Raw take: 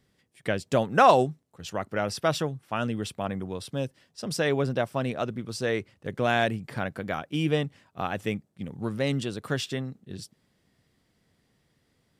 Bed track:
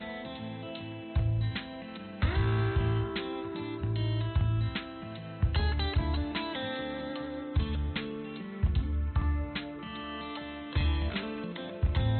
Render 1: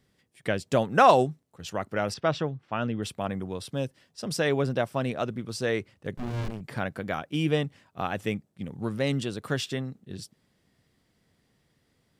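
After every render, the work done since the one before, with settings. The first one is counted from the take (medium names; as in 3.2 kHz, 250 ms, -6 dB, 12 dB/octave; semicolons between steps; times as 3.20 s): 2.14–3.03 s: distance through air 160 m; 6.17–6.61 s: sliding maximum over 65 samples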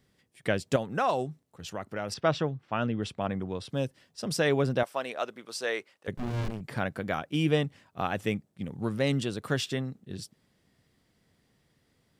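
0.76–2.12 s: compression 1.5:1, threshold -40 dBFS; 2.86–3.70 s: distance through air 70 m; 4.83–6.08 s: high-pass 540 Hz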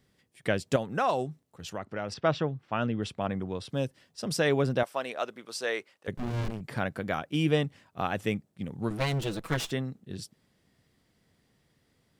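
1.78–2.56 s: distance through air 68 m; 8.90–9.71 s: comb filter that takes the minimum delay 6.1 ms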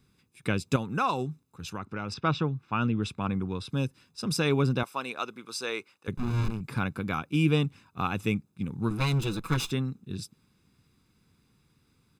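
comb 0.8 ms, depth 71%; dynamic bell 1.6 kHz, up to -4 dB, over -45 dBFS, Q 4.8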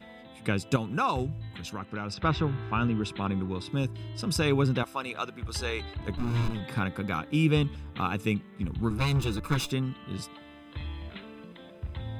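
add bed track -9 dB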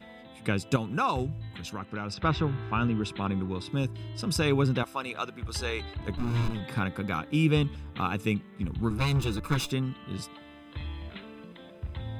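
no audible change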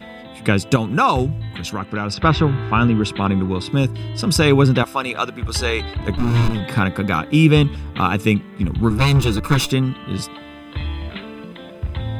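trim +11.5 dB; peak limiter -2 dBFS, peak gain reduction 2.5 dB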